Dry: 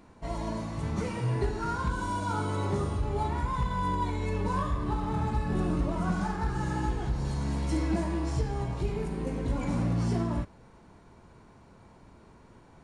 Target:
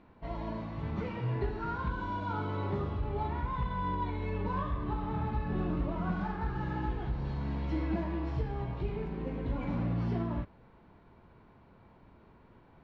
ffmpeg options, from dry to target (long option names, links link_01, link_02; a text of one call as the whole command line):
ffmpeg -i in.wav -af "lowpass=frequency=3600:width=0.5412,lowpass=frequency=3600:width=1.3066,volume=-4dB" out.wav